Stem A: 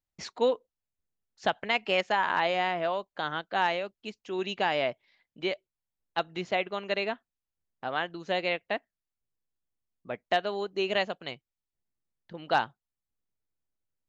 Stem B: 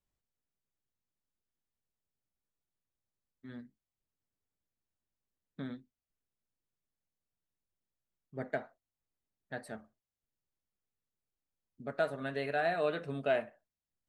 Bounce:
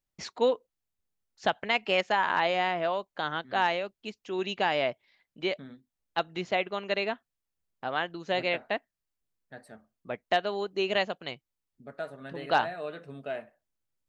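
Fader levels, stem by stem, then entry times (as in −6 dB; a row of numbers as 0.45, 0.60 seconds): +0.5, −5.0 decibels; 0.00, 0.00 seconds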